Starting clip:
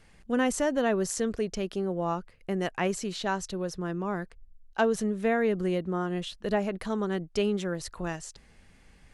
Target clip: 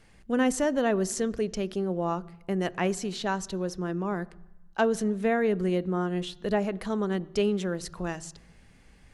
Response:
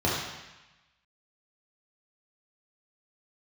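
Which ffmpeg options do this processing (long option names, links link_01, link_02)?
-filter_complex "[0:a]asplit=2[link_01][link_02];[1:a]atrim=start_sample=2205,lowshelf=frequency=300:gain=11.5[link_03];[link_02][link_03]afir=irnorm=-1:irlink=0,volume=-34dB[link_04];[link_01][link_04]amix=inputs=2:normalize=0"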